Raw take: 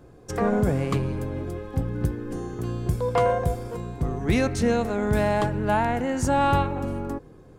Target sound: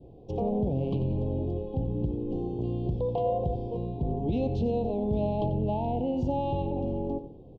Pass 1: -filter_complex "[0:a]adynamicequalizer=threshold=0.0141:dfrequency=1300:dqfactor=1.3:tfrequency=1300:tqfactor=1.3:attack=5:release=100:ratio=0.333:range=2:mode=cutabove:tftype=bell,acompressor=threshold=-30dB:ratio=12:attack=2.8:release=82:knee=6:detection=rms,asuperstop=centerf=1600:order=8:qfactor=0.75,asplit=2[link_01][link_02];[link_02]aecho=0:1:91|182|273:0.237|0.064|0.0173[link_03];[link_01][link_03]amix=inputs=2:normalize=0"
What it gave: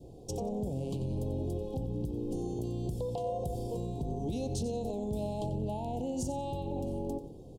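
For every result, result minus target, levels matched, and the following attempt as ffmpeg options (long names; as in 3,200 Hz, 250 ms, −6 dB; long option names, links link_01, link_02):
4,000 Hz band +7.5 dB; downward compressor: peak gain reduction +7.5 dB
-filter_complex "[0:a]adynamicequalizer=threshold=0.0141:dfrequency=1300:dqfactor=1.3:tfrequency=1300:tqfactor=1.3:attack=5:release=100:ratio=0.333:range=2:mode=cutabove:tftype=bell,lowpass=frequency=3000:width=0.5412,lowpass=frequency=3000:width=1.3066,acompressor=threshold=-30dB:ratio=12:attack=2.8:release=82:knee=6:detection=rms,asuperstop=centerf=1600:order=8:qfactor=0.75,asplit=2[link_01][link_02];[link_02]aecho=0:1:91|182|273:0.237|0.064|0.0173[link_03];[link_01][link_03]amix=inputs=2:normalize=0"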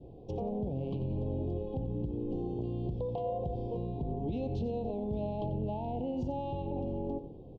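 downward compressor: peak gain reduction +7.5 dB
-filter_complex "[0:a]adynamicequalizer=threshold=0.0141:dfrequency=1300:dqfactor=1.3:tfrequency=1300:tqfactor=1.3:attack=5:release=100:ratio=0.333:range=2:mode=cutabove:tftype=bell,lowpass=frequency=3000:width=0.5412,lowpass=frequency=3000:width=1.3066,acompressor=threshold=-22dB:ratio=12:attack=2.8:release=82:knee=6:detection=rms,asuperstop=centerf=1600:order=8:qfactor=0.75,asplit=2[link_01][link_02];[link_02]aecho=0:1:91|182|273:0.237|0.064|0.0173[link_03];[link_01][link_03]amix=inputs=2:normalize=0"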